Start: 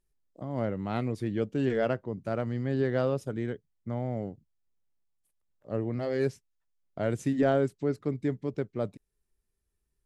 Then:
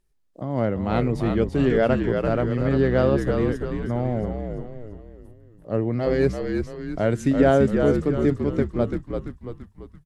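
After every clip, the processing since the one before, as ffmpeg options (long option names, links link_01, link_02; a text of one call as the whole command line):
ffmpeg -i in.wav -filter_complex "[0:a]highshelf=frequency=7600:gain=-6,asplit=2[link_01][link_02];[link_02]asplit=6[link_03][link_04][link_05][link_06][link_07][link_08];[link_03]adelay=338,afreqshift=-57,volume=-5dB[link_09];[link_04]adelay=676,afreqshift=-114,volume=-11.6dB[link_10];[link_05]adelay=1014,afreqshift=-171,volume=-18.1dB[link_11];[link_06]adelay=1352,afreqshift=-228,volume=-24.7dB[link_12];[link_07]adelay=1690,afreqshift=-285,volume=-31.2dB[link_13];[link_08]adelay=2028,afreqshift=-342,volume=-37.8dB[link_14];[link_09][link_10][link_11][link_12][link_13][link_14]amix=inputs=6:normalize=0[link_15];[link_01][link_15]amix=inputs=2:normalize=0,volume=7.5dB" out.wav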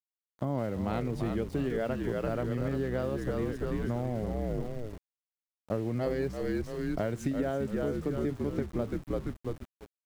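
ffmpeg -i in.wav -af "agate=range=-17dB:threshold=-36dB:ratio=16:detection=peak,acompressor=threshold=-27dB:ratio=16,aeval=exprs='val(0)*gte(abs(val(0)),0.00447)':channel_layout=same" out.wav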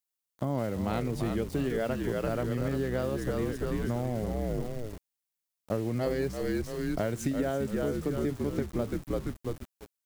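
ffmpeg -i in.wav -af "highshelf=frequency=4700:gain=9,volume=1dB" out.wav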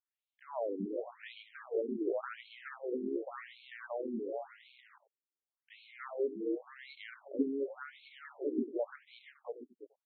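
ffmpeg -i in.wav -filter_complex "[0:a]asplit=2[link_01][link_02];[link_02]adelay=93.29,volume=-16dB,highshelf=frequency=4000:gain=-2.1[link_03];[link_01][link_03]amix=inputs=2:normalize=0,afftfilt=real='re*between(b*sr/1024,300*pow(3100/300,0.5+0.5*sin(2*PI*0.9*pts/sr))/1.41,300*pow(3100/300,0.5+0.5*sin(2*PI*0.9*pts/sr))*1.41)':imag='im*between(b*sr/1024,300*pow(3100/300,0.5+0.5*sin(2*PI*0.9*pts/sr))/1.41,300*pow(3100/300,0.5+0.5*sin(2*PI*0.9*pts/sr))*1.41)':win_size=1024:overlap=0.75" out.wav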